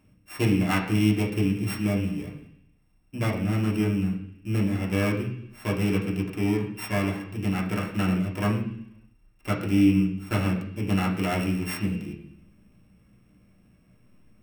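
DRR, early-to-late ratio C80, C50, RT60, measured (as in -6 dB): -3.5 dB, 10.5 dB, 7.5 dB, 0.70 s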